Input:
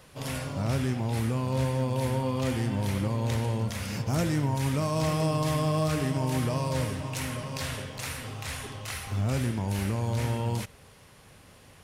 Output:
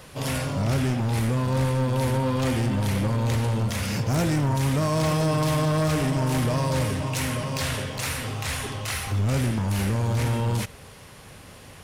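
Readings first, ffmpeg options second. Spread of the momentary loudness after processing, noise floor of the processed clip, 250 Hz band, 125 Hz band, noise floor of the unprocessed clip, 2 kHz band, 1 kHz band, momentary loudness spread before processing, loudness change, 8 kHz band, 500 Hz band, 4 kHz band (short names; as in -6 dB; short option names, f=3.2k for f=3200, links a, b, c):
6 LU, -46 dBFS, +4.0 dB, +4.5 dB, -54 dBFS, +6.0 dB, +4.5 dB, 9 LU, +4.5 dB, +5.5 dB, +4.0 dB, +5.5 dB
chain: -af "aeval=exprs='0.112*sin(PI/2*1.41*val(0)/0.112)':c=same,aeval=exprs='0.112*(cos(1*acos(clip(val(0)/0.112,-1,1)))-cos(1*PI/2))+0.00355*(cos(5*acos(clip(val(0)/0.112,-1,1)))-cos(5*PI/2))':c=same"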